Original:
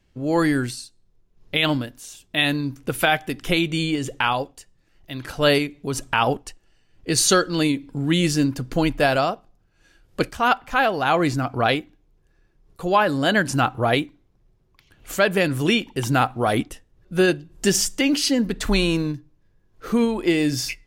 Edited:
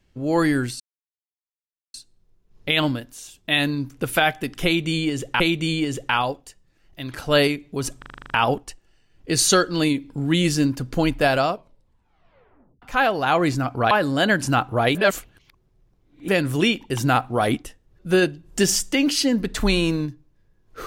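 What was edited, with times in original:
0.8 insert silence 1.14 s
3.51–4.26 loop, 2 plays
6.09 stutter 0.04 s, 9 plays
9.25 tape stop 1.36 s
11.7–12.97 cut
14.01–15.34 reverse

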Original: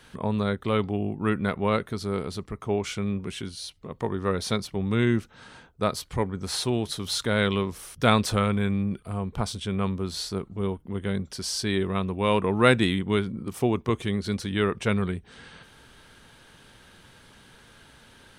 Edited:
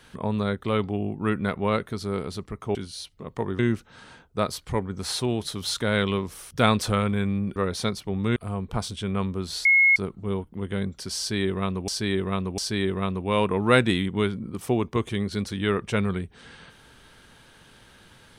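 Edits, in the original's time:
2.75–3.39 cut
4.23–5.03 move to 9
10.29 add tone 2170 Hz -14 dBFS 0.31 s
11.51–12.21 loop, 3 plays

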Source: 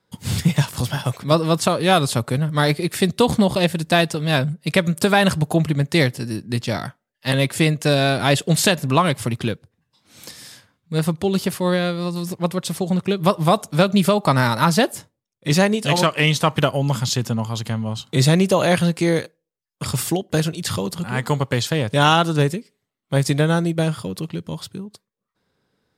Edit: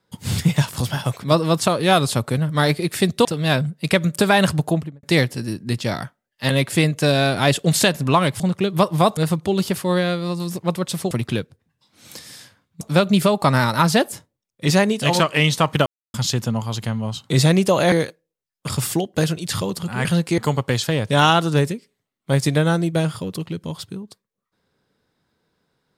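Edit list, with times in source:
3.25–4.08 cut
5.44–5.86 studio fade out
9.23–10.93 swap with 12.87–13.64
16.69–16.97 mute
18.75–19.08 move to 21.21

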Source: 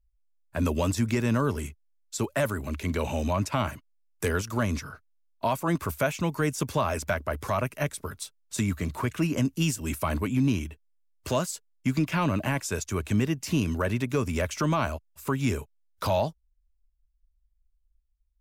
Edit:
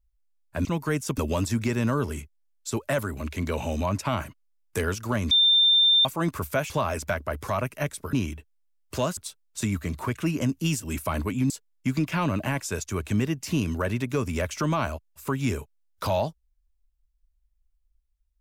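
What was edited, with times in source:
4.78–5.52 bleep 3590 Hz -15.5 dBFS
6.17–6.7 move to 0.65
10.46–11.5 move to 8.13

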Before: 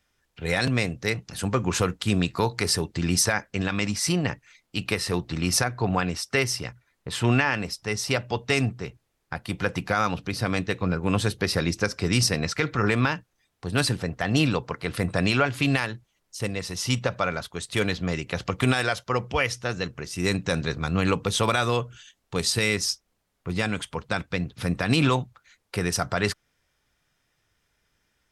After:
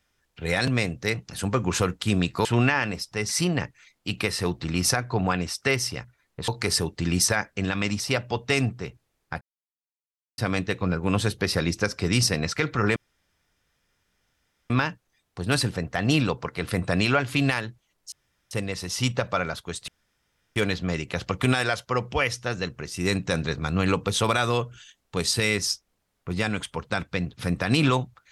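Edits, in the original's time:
2.45–3.97 swap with 7.16–8
9.41–10.38 mute
12.96 insert room tone 1.74 s
16.38 insert room tone 0.39 s
17.75 insert room tone 0.68 s

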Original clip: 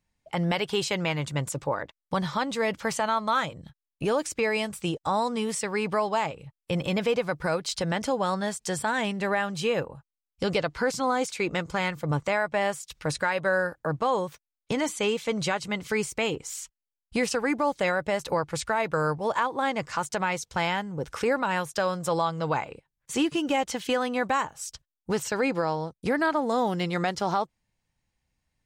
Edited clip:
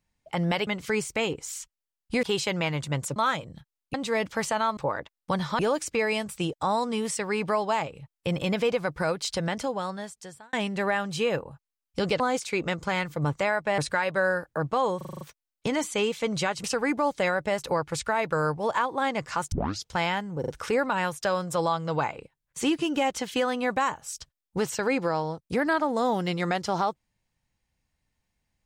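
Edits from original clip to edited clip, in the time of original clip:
1.6–2.42 swap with 3.25–4.03
7.77–8.97 fade out
10.64–11.07 cut
12.65–13.07 cut
14.26 stutter 0.04 s, 7 plays
15.69–17.25 move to 0.67
20.13 tape start 0.34 s
21.01 stutter 0.04 s, 3 plays

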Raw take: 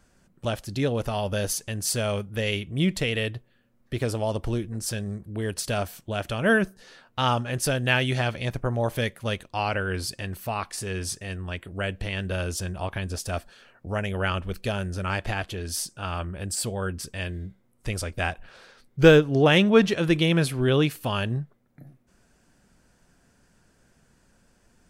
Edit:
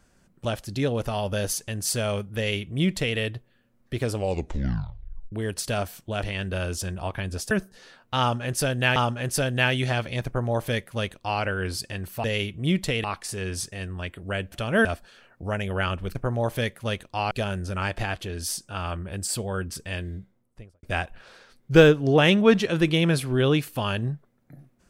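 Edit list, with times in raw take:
2.37–3.17 copy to 10.53
4.12 tape stop 1.20 s
6.23–6.56 swap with 12.01–13.29
7.25–8.01 loop, 2 plays
8.55–9.71 copy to 14.59
17.38–18.11 studio fade out

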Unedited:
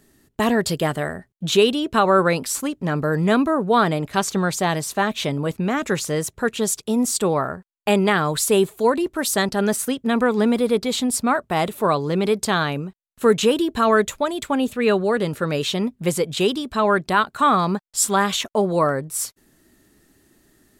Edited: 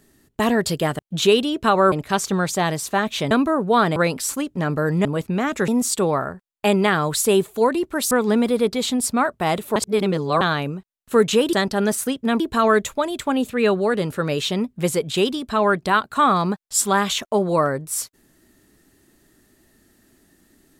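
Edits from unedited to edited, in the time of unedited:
0.99–1.29 cut
2.22–3.31 swap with 3.96–5.35
5.98–6.91 cut
9.34–10.21 move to 13.63
11.86–12.51 reverse

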